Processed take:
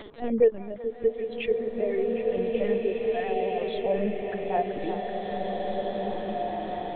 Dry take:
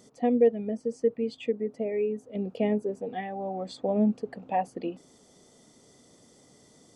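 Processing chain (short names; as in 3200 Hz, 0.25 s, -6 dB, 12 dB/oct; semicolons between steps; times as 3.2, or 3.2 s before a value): repeated pitch sweeps -1.5 st, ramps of 0.203 s; upward compressor, threshold -31 dBFS; LPC vocoder at 8 kHz pitch kept; low shelf 350 Hz -9.5 dB; delay with a stepping band-pass 0.38 s, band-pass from 1100 Hz, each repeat 0.7 oct, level -5.5 dB; bloom reverb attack 2.21 s, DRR 0 dB; gain +5 dB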